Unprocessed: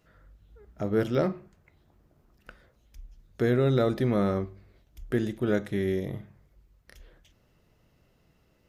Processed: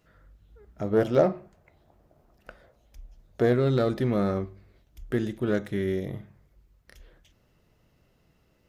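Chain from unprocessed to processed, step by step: self-modulated delay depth 0.069 ms; 0.93–3.53 s: peaking EQ 660 Hz +9.5 dB 0.94 oct

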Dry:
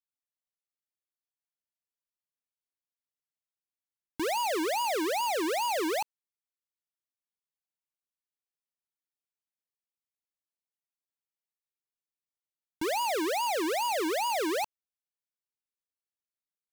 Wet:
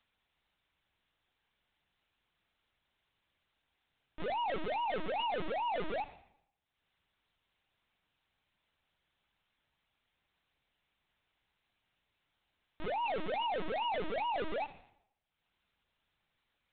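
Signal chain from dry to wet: treble shelf 2 kHz +3 dB; hum notches 50/100/150/200/250/300/350 Hz; peak limiter -29.5 dBFS, peak gain reduction 7.5 dB; upward compressor, threshold -56 dBFS; Schroeder reverb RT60 0.74 s, combs from 32 ms, DRR 14 dB; LPC vocoder at 8 kHz pitch kept

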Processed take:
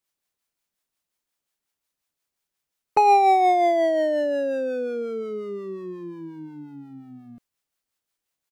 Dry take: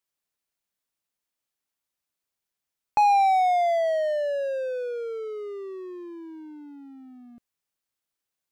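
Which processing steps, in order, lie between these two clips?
harmonic tremolo 5.6 Hz, depth 50%, crossover 560 Hz; harmony voices -12 st -9 dB; trim +5 dB

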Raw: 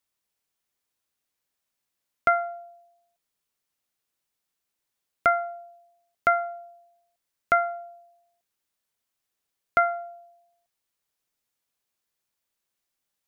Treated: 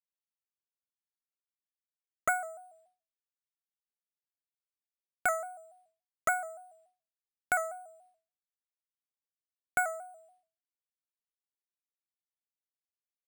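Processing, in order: sample-and-hold 5×; expander -55 dBFS; vibrato with a chosen wave square 3.5 Hz, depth 100 cents; trim -8 dB

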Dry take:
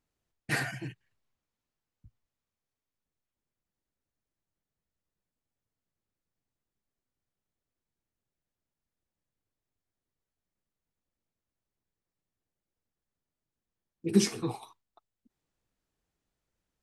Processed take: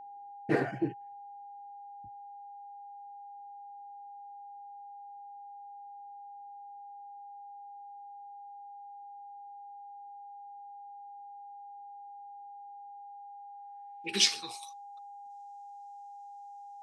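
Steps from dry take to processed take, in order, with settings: band-pass sweep 400 Hz -> 6.5 kHz, 12.97–14.59 s; whistle 810 Hz -60 dBFS; trim +15 dB

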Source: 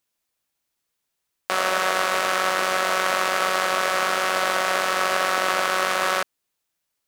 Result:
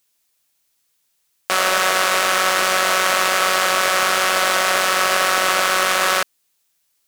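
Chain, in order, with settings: saturation -10.5 dBFS, distortion -17 dB; treble shelf 2.4 kHz +9 dB; trim +3.5 dB

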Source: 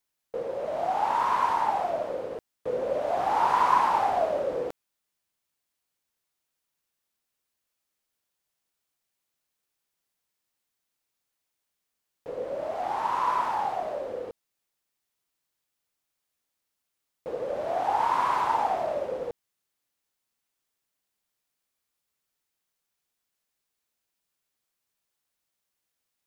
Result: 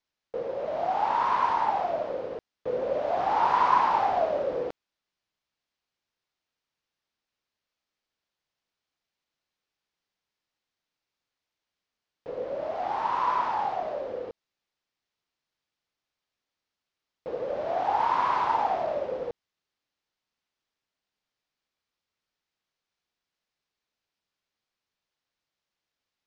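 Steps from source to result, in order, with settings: low-pass 5.5 kHz 24 dB/octave

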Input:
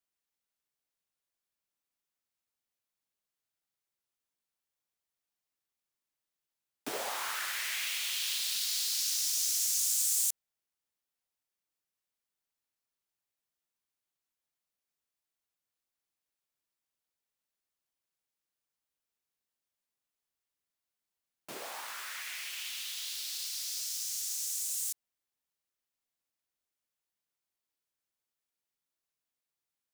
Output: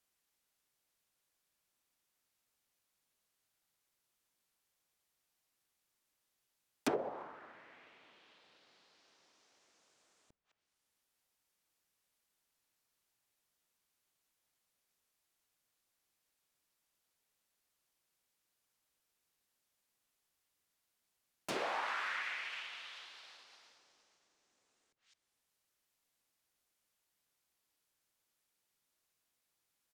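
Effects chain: speakerphone echo 210 ms, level -20 dB; low-pass that closes with the level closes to 350 Hz, closed at -32.5 dBFS; trim +7 dB

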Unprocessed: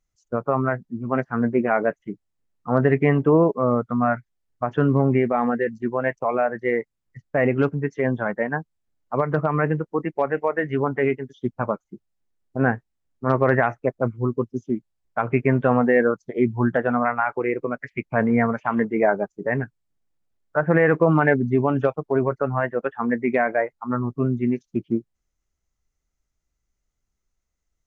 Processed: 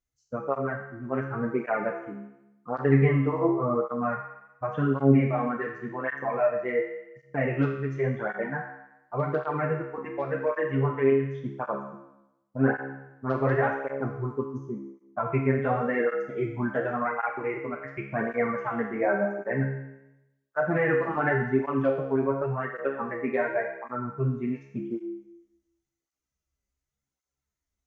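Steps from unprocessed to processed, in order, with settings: 14.58–15.26 s: resonant high shelf 1.6 kHz -7.5 dB, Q 1.5; feedback comb 68 Hz, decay 0.91 s, harmonics all, mix 90%; cancelling through-zero flanger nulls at 0.9 Hz, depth 6.8 ms; trim +9 dB

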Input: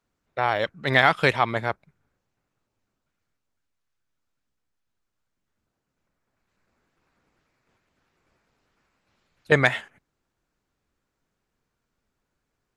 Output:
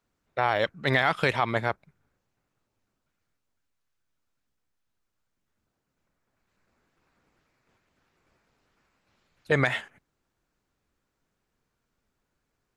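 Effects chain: peak limiter -10 dBFS, peak gain reduction 8 dB

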